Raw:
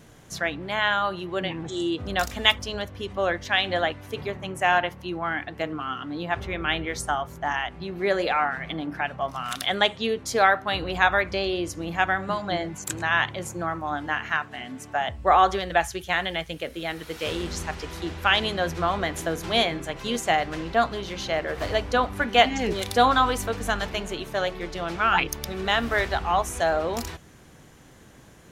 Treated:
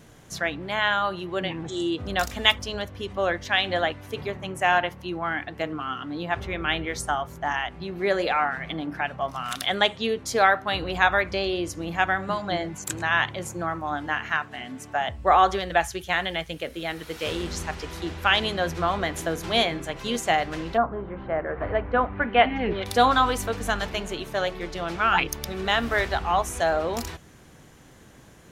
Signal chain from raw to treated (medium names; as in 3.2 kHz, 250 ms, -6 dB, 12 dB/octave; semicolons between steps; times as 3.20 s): 20.76–22.85 s: low-pass 1.3 kHz -> 3.2 kHz 24 dB/octave